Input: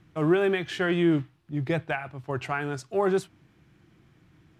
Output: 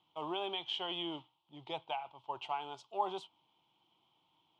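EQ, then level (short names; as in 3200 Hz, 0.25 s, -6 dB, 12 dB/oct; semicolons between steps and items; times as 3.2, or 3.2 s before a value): double band-pass 1700 Hz, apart 1.8 oct; +3.5 dB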